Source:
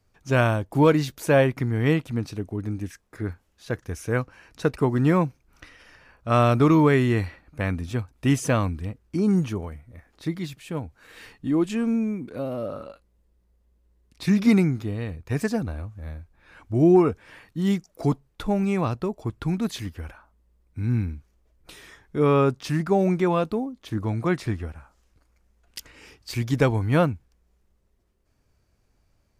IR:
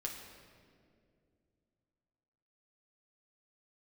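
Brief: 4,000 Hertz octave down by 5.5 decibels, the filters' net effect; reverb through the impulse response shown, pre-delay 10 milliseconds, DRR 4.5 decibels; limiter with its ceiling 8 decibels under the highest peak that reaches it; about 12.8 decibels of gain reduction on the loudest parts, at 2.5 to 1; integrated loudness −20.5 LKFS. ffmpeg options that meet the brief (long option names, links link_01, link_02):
-filter_complex "[0:a]equalizer=frequency=4000:width_type=o:gain=-7.5,acompressor=threshold=-33dB:ratio=2.5,alimiter=level_in=2dB:limit=-24dB:level=0:latency=1,volume=-2dB,asplit=2[link_01][link_02];[1:a]atrim=start_sample=2205,adelay=10[link_03];[link_02][link_03]afir=irnorm=-1:irlink=0,volume=-4dB[link_04];[link_01][link_04]amix=inputs=2:normalize=0,volume=14dB"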